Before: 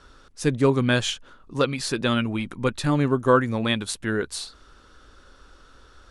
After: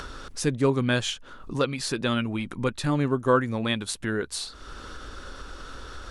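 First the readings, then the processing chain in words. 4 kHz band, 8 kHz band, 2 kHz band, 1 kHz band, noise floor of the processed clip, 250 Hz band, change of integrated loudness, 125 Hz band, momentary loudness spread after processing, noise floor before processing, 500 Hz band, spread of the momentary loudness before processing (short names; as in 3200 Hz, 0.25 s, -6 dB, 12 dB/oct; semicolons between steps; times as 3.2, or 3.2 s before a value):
-2.0 dB, -1.0 dB, -2.5 dB, -3.0 dB, -46 dBFS, -3.0 dB, -3.0 dB, -2.5 dB, 18 LU, -53 dBFS, -3.0 dB, 11 LU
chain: upward compressor, threshold -22 dBFS; gain -3 dB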